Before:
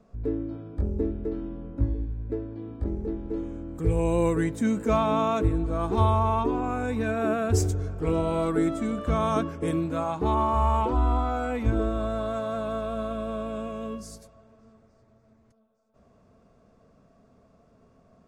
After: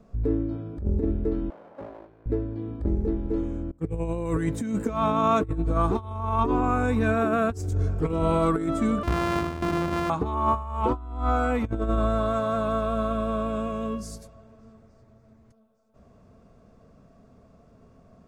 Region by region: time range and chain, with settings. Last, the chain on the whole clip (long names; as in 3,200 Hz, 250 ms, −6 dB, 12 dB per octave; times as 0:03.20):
0:01.50–0:02.26: lower of the sound and its delayed copy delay 1.3 ms + high-pass filter 560 Hz + high-shelf EQ 2,900 Hz −12 dB
0:03.71–0:04.26: noise gate −32 dBFS, range −24 dB + high-shelf EQ 4,000 Hz −6 dB
0:09.03–0:10.10: samples sorted by size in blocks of 128 samples + low-pass filter 2,300 Hz 6 dB per octave + downward compressor 2.5 to 1, threshold −27 dBFS
whole clip: low-shelf EQ 190 Hz +5.5 dB; compressor whose output falls as the input rises −24 dBFS, ratio −0.5; dynamic equaliser 1,200 Hz, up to +6 dB, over −43 dBFS, Q 2.6